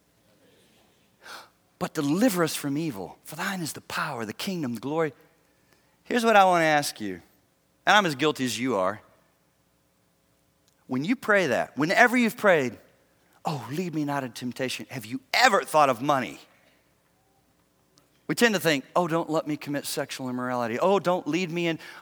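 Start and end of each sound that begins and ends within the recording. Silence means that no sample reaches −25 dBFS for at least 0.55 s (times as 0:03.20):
0:01.81–0:05.08
0:06.11–0:07.14
0:07.87–0:08.92
0:10.92–0:12.68
0:13.47–0:16.28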